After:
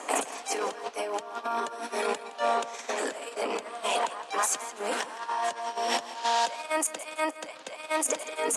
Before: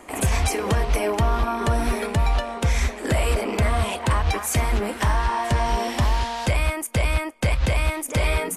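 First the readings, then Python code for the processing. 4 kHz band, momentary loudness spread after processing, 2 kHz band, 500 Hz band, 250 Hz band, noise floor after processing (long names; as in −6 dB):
−4.0 dB, 6 LU, −6.5 dB, −4.5 dB, −12.0 dB, −45 dBFS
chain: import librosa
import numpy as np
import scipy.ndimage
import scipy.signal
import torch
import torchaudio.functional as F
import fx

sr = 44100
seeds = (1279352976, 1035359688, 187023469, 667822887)

p1 = fx.over_compress(x, sr, threshold_db=-30.0, ratio=-1.0)
p2 = fx.cabinet(p1, sr, low_hz=320.0, low_slope=24, high_hz=9800.0, hz=(350.0, 2100.0, 6700.0), db=(-9, -6, 4))
y = p2 + fx.echo_feedback(p2, sr, ms=166, feedback_pct=32, wet_db=-15.5, dry=0)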